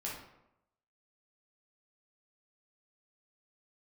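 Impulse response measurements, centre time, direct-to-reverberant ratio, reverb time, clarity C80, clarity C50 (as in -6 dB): 47 ms, -5.0 dB, 0.85 s, 7.0 dB, 2.5 dB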